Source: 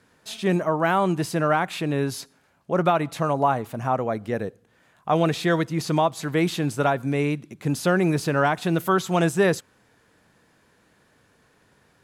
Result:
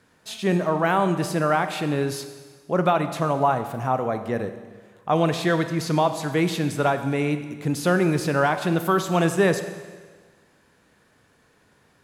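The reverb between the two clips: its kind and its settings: Schroeder reverb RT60 1.5 s, combs from 30 ms, DRR 9 dB

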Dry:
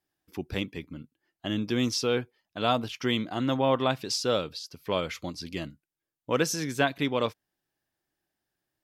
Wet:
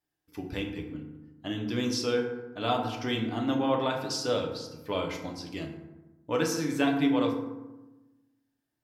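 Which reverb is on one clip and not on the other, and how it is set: FDN reverb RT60 1.1 s, low-frequency decay 1.35×, high-frequency decay 0.45×, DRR 0.5 dB; trim -5 dB

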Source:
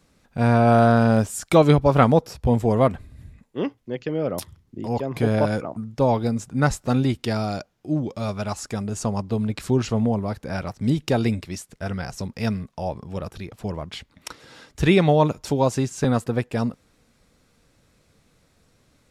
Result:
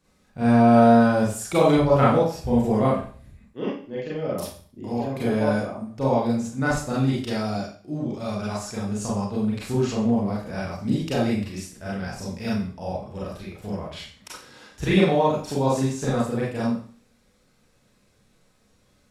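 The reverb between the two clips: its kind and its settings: Schroeder reverb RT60 0.44 s, combs from 30 ms, DRR -7 dB; trim -9 dB

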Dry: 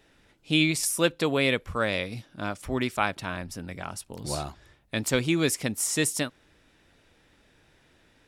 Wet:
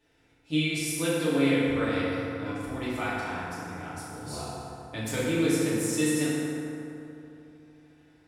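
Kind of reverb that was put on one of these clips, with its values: FDN reverb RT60 3.1 s, high-frequency decay 0.45×, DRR -10 dB; trim -13 dB

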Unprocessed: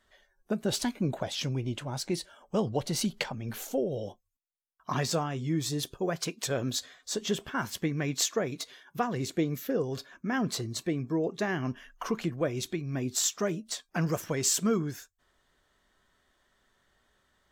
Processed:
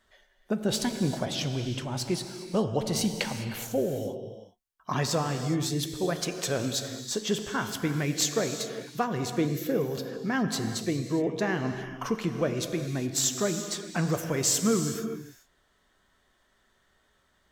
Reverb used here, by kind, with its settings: gated-style reverb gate 440 ms flat, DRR 6.5 dB; trim +1.5 dB

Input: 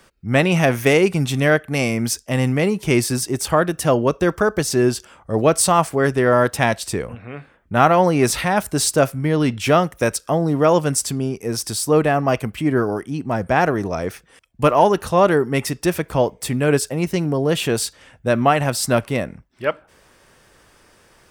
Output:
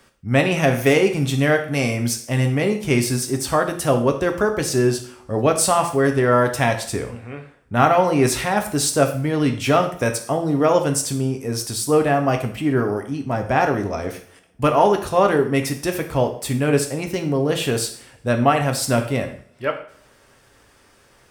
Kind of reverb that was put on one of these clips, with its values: two-slope reverb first 0.51 s, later 1.9 s, from -27 dB, DRR 4.5 dB; trim -2.5 dB

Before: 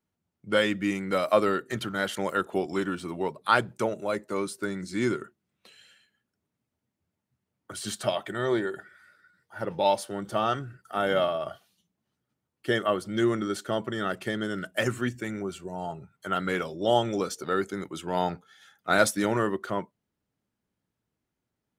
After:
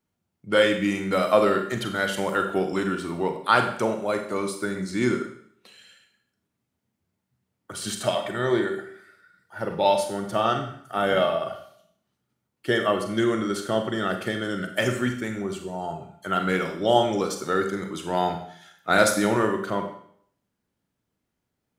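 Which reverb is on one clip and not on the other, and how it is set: Schroeder reverb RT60 0.62 s, combs from 32 ms, DRR 5 dB; trim +2.5 dB

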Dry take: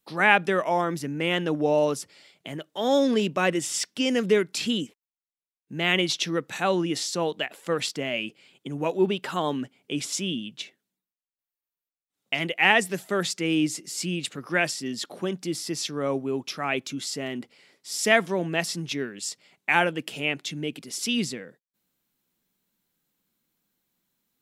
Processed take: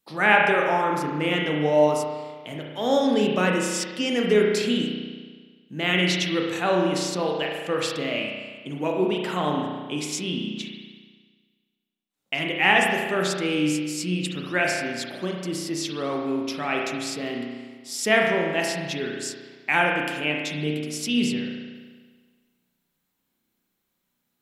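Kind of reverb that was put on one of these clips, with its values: spring tank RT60 1.5 s, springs 33 ms, chirp 45 ms, DRR -0.5 dB; trim -1 dB

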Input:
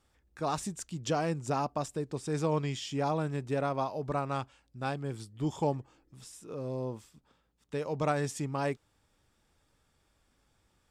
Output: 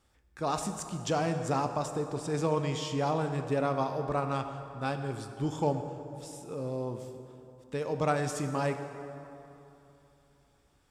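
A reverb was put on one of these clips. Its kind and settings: plate-style reverb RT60 3.1 s, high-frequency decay 0.55×, DRR 6.5 dB; trim +1 dB

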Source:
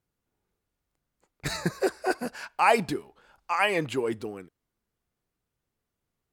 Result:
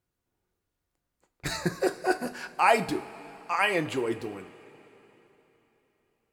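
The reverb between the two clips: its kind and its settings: two-slope reverb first 0.27 s, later 3.7 s, from -19 dB, DRR 7 dB; trim -1 dB

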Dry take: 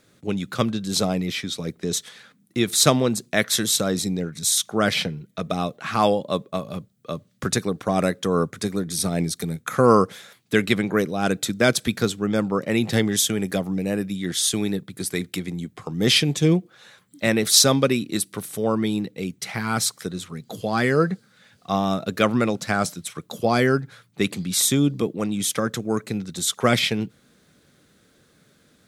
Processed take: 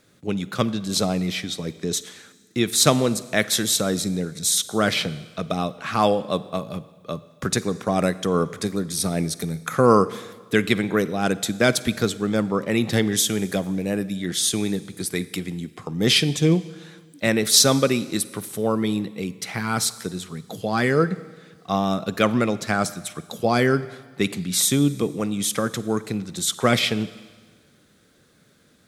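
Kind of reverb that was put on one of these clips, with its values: Schroeder reverb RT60 1.5 s, DRR 16.5 dB

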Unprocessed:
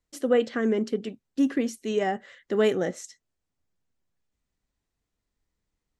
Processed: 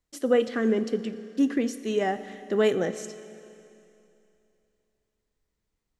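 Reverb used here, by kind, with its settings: Schroeder reverb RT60 2.8 s, combs from 28 ms, DRR 12.5 dB

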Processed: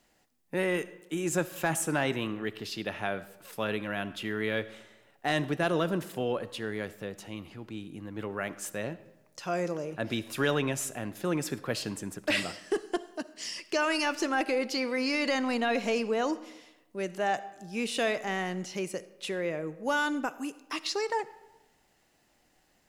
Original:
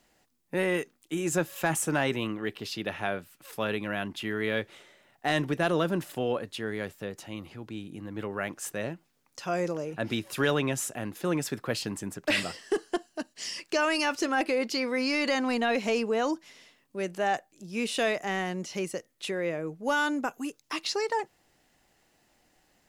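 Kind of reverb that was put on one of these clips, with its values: algorithmic reverb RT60 1 s, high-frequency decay 0.65×, pre-delay 20 ms, DRR 15.5 dB; trim -1.5 dB

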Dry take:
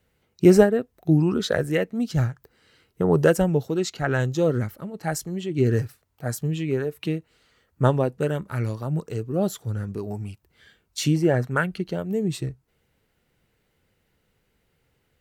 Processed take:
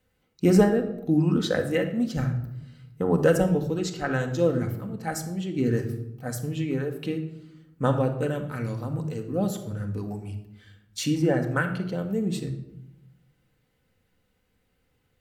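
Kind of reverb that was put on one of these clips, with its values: simulated room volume 2800 m³, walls furnished, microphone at 2 m; trim -4 dB

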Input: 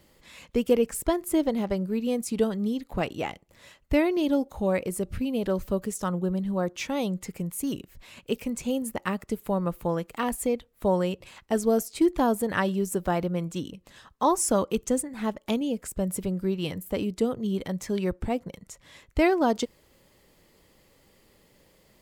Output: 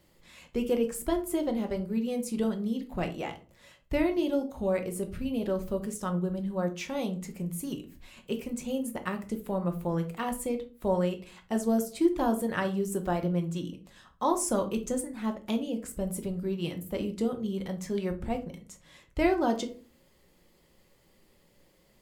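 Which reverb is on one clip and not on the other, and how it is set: simulated room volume 230 m³, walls furnished, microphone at 0.95 m; trim -5.5 dB

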